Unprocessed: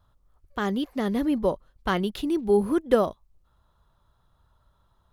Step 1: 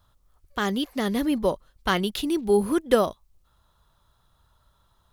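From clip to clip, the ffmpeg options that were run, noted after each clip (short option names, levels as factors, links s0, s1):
-af "highshelf=f=2100:g=9.5"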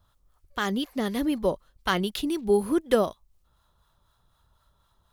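-filter_complex "[0:a]acrossover=split=740[s0][s1];[s0]aeval=exprs='val(0)*(1-0.5/2+0.5/2*cos(2*PI*4*n/s))':c=same[s2];[s1]aeval=exprs='val(0)*(1-0.5/2-0.5/2*cos(2*PI*4*n/s))':c=same[s3];[s2][s3]amix=inputs=2:normalize=0"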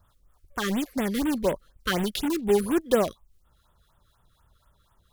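-filter_complex "[0:a]asplit=2[s0][s1];[s1]aeval=exprs='(mod(15.8*val(0)+1,2)-1)/15.8':c=same,volume=0.447[s2];[s0][s2]amix=inputs=2:normalize=0,afftfilt=real='re*(1-between(b*sr/1024,740*pow(5400/740,0.5+0.5*sin(2*PI*4.1*pts/sr))/1.41,740*pow(5400/740,0.5+0.5*sin(2*PI*4.1*pts/sr))*1.41))':imag='im*(1-between(b*sr/1024,740*pow(5400/740,0.5+0.5*sin(2*PI*4.1*pts/sr))/1.41,740*pow(5400/740,0.5+0.5*sin(2*PI*4.1*pts/sr))*1.41))':win_size=1024:overlap=0.75"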